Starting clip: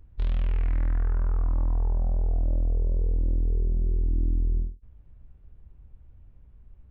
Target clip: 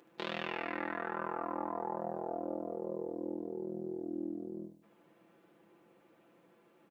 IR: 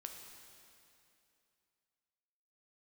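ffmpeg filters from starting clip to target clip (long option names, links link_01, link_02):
-af "alimiter=limit=-20.5dB:level=0:latency=1:release=72,highpass=frequency=280:width=0.5412,highpass=frequency=280:width=1.3066,aecho=1:1:5.9:0.68,aecho=1:1:74|148|222|296:0.398|0.155|0.0606|0.0236,volume=8dB"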